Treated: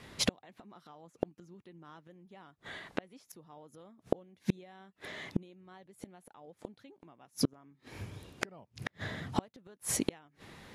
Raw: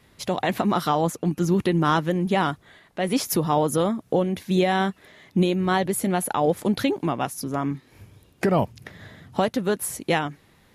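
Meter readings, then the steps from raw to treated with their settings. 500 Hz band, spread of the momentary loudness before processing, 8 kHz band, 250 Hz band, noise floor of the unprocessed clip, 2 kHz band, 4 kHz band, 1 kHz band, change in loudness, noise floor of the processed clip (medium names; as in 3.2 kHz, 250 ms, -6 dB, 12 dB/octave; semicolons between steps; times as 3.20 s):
-18.5 dB, 8 LU, -8.5 dB, -16.5 dB, -58 dBFS, -14.0 dB, -9.5 dB, -23.0 dB, -14.5 dB, -75 dBFS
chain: Bessel low-pass 8.1 kHz, order 2; bass shelf 93 Hz -6.5 dB; inverted gate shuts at -21 dBFS, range -38 dB; trim +6 dB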